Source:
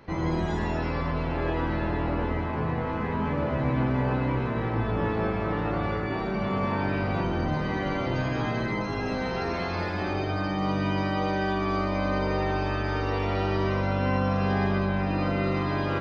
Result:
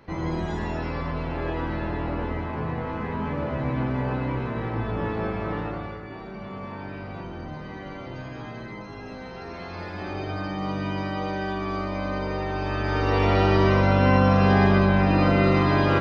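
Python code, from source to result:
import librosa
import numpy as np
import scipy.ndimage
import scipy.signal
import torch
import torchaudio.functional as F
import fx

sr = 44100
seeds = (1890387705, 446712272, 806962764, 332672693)

y = fx.gain(x, sr, db=fx.line((5.58, -1.0), (6.0, -9.0), (9.38, -9.0), (10.3, -2.0), (12.5, -2.0), (13.25, 7.0)))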